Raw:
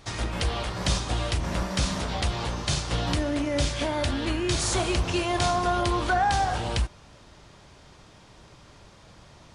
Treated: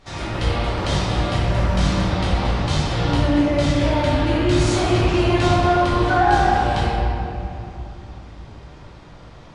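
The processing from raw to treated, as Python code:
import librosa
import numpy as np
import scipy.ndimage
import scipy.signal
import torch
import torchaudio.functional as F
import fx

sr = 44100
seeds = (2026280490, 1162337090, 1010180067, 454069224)

y = fx.high_shelf(x, sr, hz=6300.0, db=-11.0)
y = fx.room_shoebox(y, sr, seeds[0], volume_m3=120.0, walls='hard', distance_m=1.1)
y = y * 10.0 ** (-2.0 / 20.0)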